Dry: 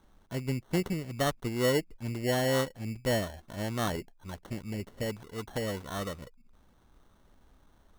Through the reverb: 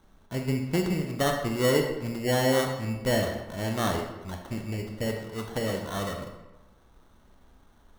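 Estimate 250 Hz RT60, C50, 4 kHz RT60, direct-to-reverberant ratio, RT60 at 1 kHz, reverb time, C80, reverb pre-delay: 1.0 s, 5.0 dB, 0.70 s, 2.5 dB, 1.1 s, 1.1 s, 7.5 dB, 21 ms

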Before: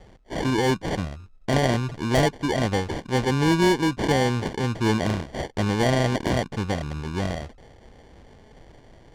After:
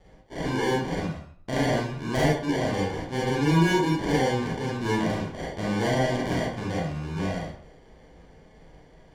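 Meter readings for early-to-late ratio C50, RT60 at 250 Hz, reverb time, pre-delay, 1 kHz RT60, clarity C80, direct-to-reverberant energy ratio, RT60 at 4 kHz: 1.0 dB, 0.55 s, 0.55 s, 32 ms, 0.55 s, 6.5 dB, -6.0 dB, 0.35 s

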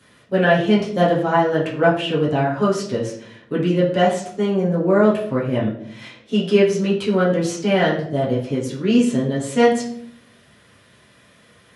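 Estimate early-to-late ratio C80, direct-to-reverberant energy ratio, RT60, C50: 10.0 dB, -8.5 dB, 0.65 s, 6.0 dB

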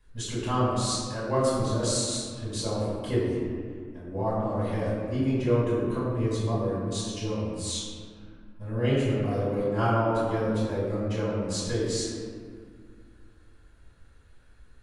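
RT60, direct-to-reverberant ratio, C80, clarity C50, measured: 2.1 s, -9.5 dB, 0.5 dB, -1.5 dB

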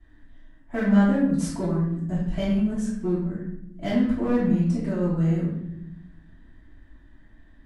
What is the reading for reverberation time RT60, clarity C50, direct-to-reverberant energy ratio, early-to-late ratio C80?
0.80 s, 1.5 dB, -13.5 dB, 4.5 dB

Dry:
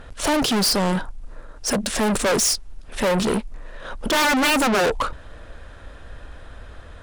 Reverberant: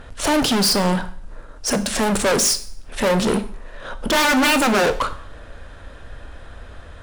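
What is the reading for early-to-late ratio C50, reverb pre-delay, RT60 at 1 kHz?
14.0 dB, 7 ms, 0.55 s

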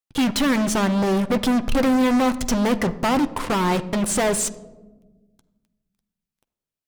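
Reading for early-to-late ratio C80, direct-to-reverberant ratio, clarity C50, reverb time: 18.0 dB, 10.0 dB, 16.0 dB, 1.2 s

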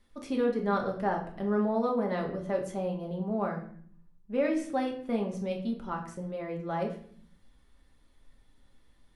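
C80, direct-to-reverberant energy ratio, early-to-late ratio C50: 12.5 dB, 0.5 dB, 9.0 dB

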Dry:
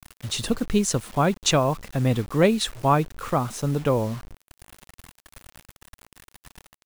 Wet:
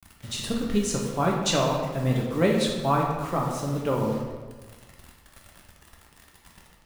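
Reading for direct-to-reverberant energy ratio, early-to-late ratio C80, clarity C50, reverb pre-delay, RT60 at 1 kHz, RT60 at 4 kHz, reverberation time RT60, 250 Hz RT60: -1.5 dB, 4.5 dB, 2.0 dB, 5 ms, 1.3 s, 0.95 s, 1.4 s, 1.5 s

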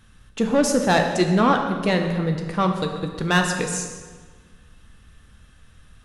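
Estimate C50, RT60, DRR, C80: 5.5 dB, 1.5 s, 3.5 dB, 7.0 dB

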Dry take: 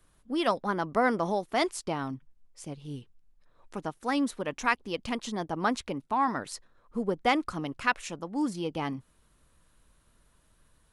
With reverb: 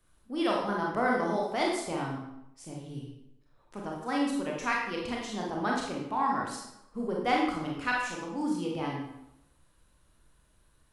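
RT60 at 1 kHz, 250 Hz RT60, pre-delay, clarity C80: 0.85 s, 0.80 s, 24 ms, 5.0 dB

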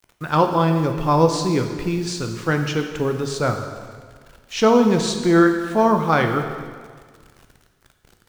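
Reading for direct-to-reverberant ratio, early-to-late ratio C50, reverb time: 5.0 dB, 7.0 dB, 1.7 s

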